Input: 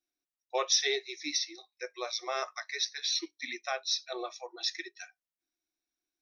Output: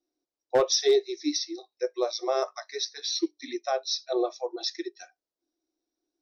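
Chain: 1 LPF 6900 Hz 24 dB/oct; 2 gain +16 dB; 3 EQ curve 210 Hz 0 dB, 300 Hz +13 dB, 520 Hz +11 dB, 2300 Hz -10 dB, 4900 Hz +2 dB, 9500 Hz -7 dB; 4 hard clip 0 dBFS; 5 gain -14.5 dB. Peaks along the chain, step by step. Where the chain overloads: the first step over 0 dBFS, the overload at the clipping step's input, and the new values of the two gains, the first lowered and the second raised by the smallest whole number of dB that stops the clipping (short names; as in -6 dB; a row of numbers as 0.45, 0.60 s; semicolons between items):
-14.0, +2.0, +6.0, 0.0, -14.5 dBFS; step 2, 6.0 dB; step 2 +10 dB, step 5 -8.5 dB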